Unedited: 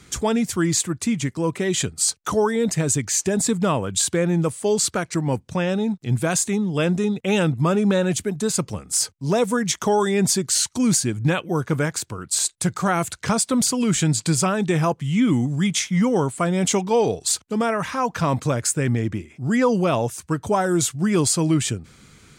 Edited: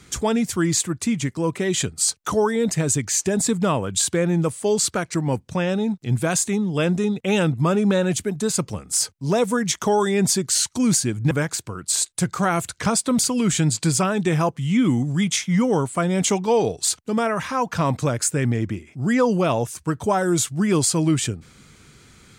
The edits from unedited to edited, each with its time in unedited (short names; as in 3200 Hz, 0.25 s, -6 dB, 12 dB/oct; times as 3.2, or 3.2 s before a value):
11.31–11.74 cut